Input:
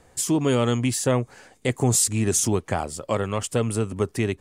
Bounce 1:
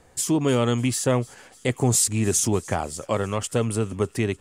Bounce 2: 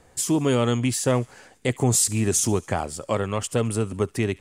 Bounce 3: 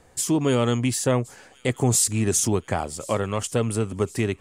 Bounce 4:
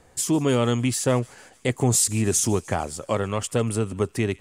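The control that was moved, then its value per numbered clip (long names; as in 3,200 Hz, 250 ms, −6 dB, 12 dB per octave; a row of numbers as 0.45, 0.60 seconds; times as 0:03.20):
delay with a high-pass on its return, delay time: 300, 70, 1,071, 151 milliseconds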